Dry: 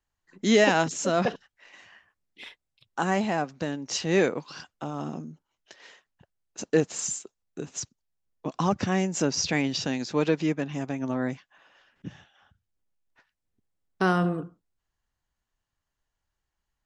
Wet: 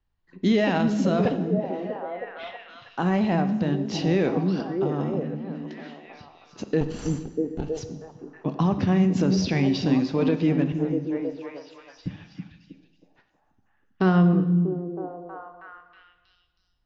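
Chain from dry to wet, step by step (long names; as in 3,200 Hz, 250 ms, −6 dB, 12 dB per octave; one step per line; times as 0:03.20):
0:06.81–0:07.77: lower of the sound and its delayed copy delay 0.67 ms
parametric band 1,500 Hz −2 dB
0:10.72–0:12.06: inverse Chebyshev band-stop filter 200–2,100 Hz, stop band 60 dB
low-shelf EQ 300 Hz +10 dB
on a send: echo through a band-pass that steps 320 ms, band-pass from 210 Hz, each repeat 0.7 octaves, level −3 dB
on the sum: brickwall limiter −13 dBFS, peak gain reduction 7.5 dB
low-pass filter 4,700 Hz 24 dB per octave
dense smooth reverb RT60 1.2 s, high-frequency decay 0.95×, DRR 9 dB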